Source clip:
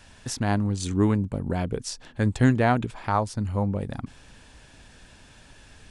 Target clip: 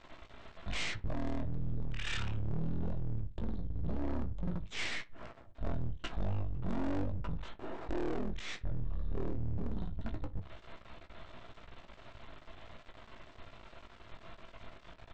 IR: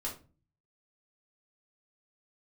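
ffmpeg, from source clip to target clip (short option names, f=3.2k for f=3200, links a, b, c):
-filter_complex "[0:a]acompressor=threshold=-23dB:ratio=6,aeval=exprs='max(val(0),0)':c=same,flanger=delay=6.3:depth=1.2:regen=-29:speed=0.47:shape=triangular,asoftclip=type=tanh:threshold=-33dB,asetrate=17199,aresample=44100,asplit=2[a][b];[b]adelay=62,lowpass=f=1.8k:p=1,volume=-19.5dB,asplit=2[c][d];[d]adelay=62,lowpass=f=1.8k:p=1,volume=0.4,asplit=2[e][f];[f]adelay=62,lowpass=f=1.8k:p=1,volume=0.4[g];[c][e][g]amix=inputs=3:normalize=0[h];[a][h]amix=inputs=2:normalize=0,volume=6dB"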